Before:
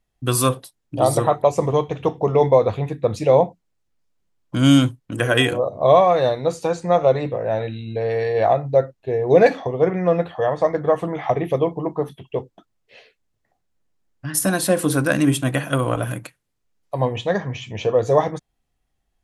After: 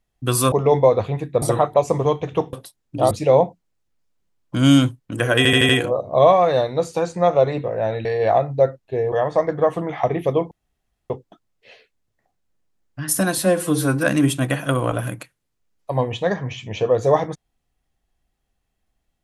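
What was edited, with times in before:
0.52–1.1 swap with 2.21–3.11
5.37 stutter 0.08 s, 5 plays
7.73–8.2 cut
9.27–10.38 cut
11.77–12.36 room tone
14.64–15.08 stretch 1.5×

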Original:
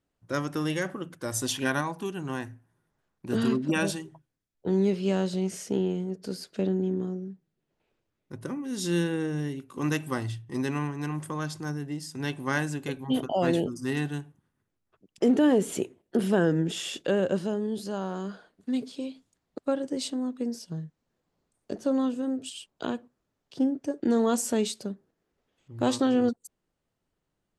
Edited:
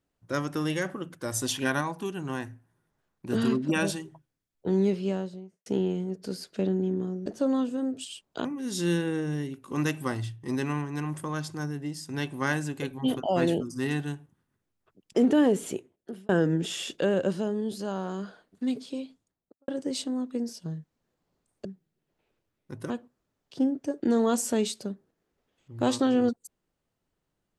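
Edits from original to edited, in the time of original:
4.8–5.66 studio fade out
7.26–8.51 swap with 21.71–22.9
15.51–16.35 fade out
18.99–19.74 studio fade out

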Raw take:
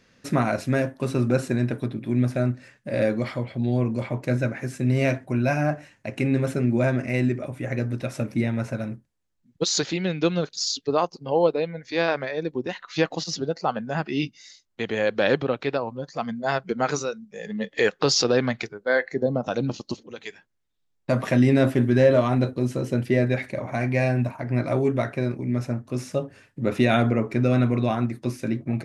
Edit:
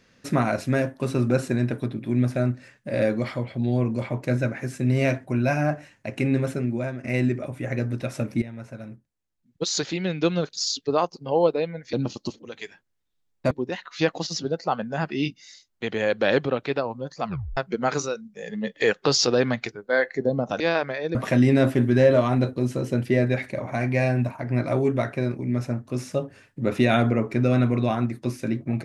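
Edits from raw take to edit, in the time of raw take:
6.34–7.04 fade out, to -13 dB
8.42–10.29 fade in, from -14 dB
11.93–12.48 swap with 19.57–21.15
16.22 tape stop 0.32 s

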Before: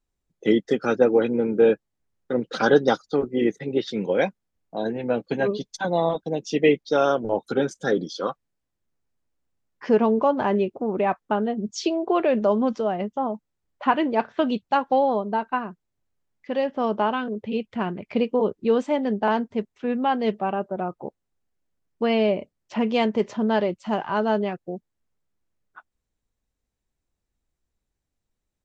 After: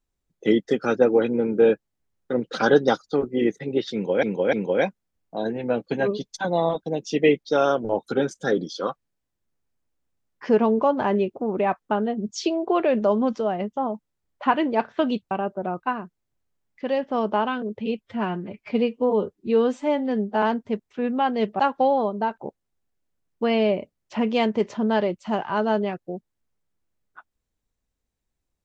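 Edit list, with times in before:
3.93–4.23 loop, 3 plays
14.71–15.49 swap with 20.45–20.97
17.67–19.28 stretch 1.5×

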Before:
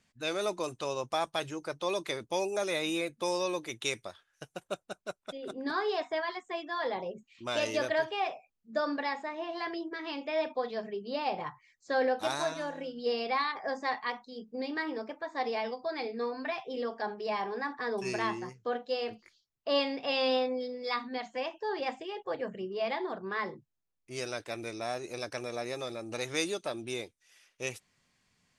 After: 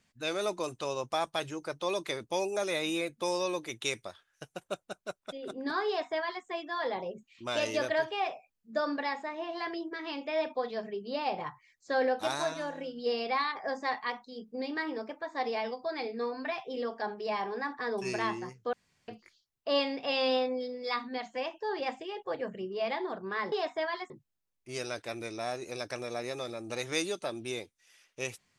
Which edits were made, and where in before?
5.87–6.45 copy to 23.52
18.73–19.08 room tone

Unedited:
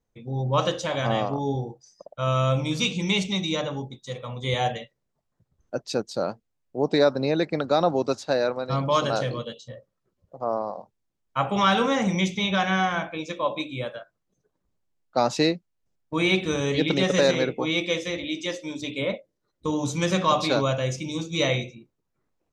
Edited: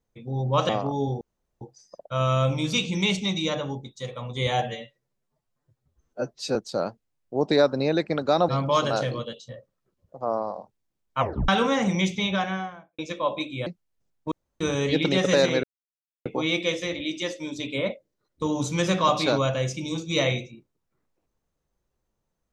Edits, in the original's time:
0.69–1.16 cut
1.68 insert room tone 0.40 s
4.69–5.98 stretch 1.5×
7.91–8.68 cut
11.39 tape stop 0.29 s
12.36–13.18 studio fade out
13.86–15.52 cut
16.17–16.46 room tone
17.49 insert silence 0.62 s

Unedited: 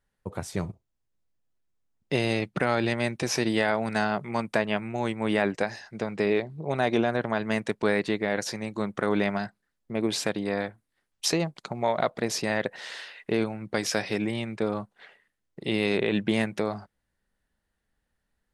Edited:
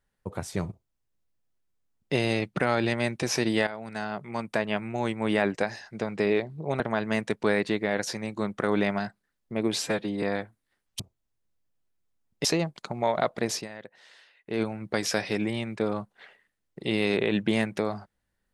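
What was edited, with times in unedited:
0.69–2.14 copy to 11.25
3.67–4.93 fade in, from -13.5 dB
6.8–7.19 cut
10.21–10.48 stretch 1.5×
12.33–13.43 dip -15.5 dB, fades 0.16 s

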